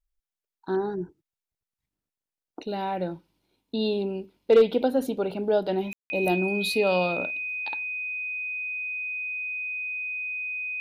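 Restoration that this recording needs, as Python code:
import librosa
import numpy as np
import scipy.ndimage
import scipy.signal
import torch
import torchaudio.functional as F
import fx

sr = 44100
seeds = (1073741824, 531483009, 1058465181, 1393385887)

y = fx.fix_declip(x, sr, threshold_db=-11.0)
y = fx.notch(y, sr, hz=2500.0, q=30.0)
y = fx.fix_ambience(y, sr, seeds[0], print_start_s=3.23, print_end_s=3.73, start_s=5.93, end_s=6.1)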